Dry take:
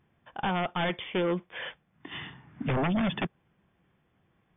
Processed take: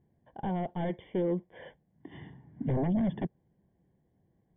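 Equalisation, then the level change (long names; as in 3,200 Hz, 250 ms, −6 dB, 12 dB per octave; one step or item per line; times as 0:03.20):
moving average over 34 samples
0.0 dB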